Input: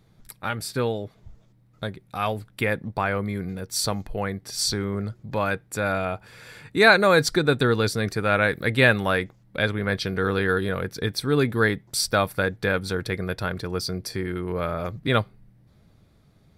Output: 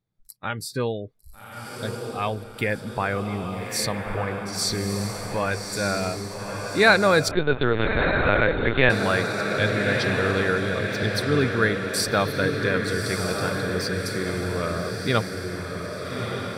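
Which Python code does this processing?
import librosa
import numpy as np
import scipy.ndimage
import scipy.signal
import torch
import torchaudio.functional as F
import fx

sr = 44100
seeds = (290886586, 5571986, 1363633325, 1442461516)

y = fx.noise_reduce_blind(x, sr, reduce_db=22)
y = fx.echo_diffused(y, sr, ms=1223, feedback_pct=57, wet_db=-4.5)
y = fx.lpc_vocoder(y, sr, seeds[0], excitation='pitch_kept', order=10, at=(7.31, 8.9))
y = y * librosa.db_to_amplitude(-1.0)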